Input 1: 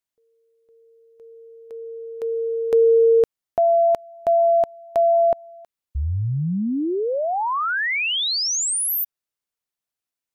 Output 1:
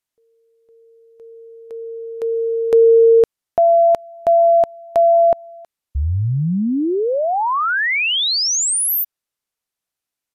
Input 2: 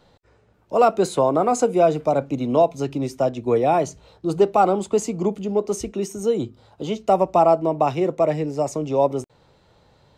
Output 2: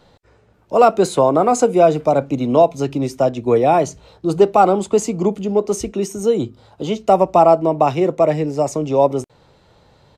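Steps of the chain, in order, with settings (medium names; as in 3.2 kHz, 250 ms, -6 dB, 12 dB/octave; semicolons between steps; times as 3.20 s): resampled via 32 kHz; trim +4.5 dB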